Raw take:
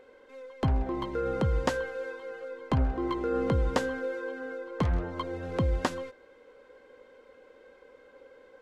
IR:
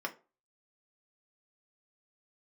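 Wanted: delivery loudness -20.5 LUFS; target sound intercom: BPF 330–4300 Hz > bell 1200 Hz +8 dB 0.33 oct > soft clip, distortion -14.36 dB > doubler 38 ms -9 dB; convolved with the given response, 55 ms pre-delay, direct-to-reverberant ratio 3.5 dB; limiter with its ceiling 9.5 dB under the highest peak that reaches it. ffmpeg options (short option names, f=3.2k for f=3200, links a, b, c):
-filter_complex "[0:a]alimiter=limit=-21.5dB:level=0:latency=1,asplit=2[a][b];[1:a]atrim=start_sample=2205,adelay=55[c];[b][c]afir=irnorm=-1:irlink=0,volume=-7dB[d];[a][d]amix=inputs=2:normalize=0,highpass=330,lowpass=4.3k,equalizer=f=1.2k:t=o:w=0.33:g=8,asoftclip=threshold=-28dB,asplit=2[e][f];[f]adelay=38,volume=-9dB[g];[e][g]amix=inputs=2:normalize=0,volume=14.5dB"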